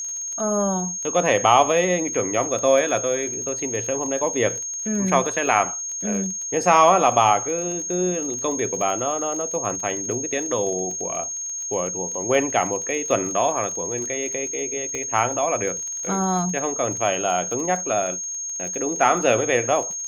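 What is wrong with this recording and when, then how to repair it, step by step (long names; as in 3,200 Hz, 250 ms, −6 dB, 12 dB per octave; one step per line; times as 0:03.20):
surface crackle 28 per second −29 dBFS
whistle 6,500 Hz −27 dBFS
0:14.95: click −16 dBFS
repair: click removal
notch filter 6,500 Hz, Q 30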